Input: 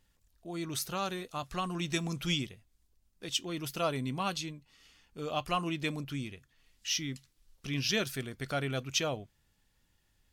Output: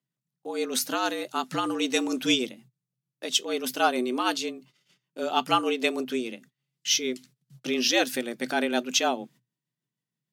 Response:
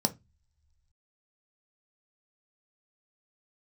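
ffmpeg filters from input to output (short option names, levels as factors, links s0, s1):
-af "tremolo=f=6.5:d=0.36,agate=range=0.0562:threshold=0.001:ratio=16:detection=peak,afreqshift=120,volume=2.82"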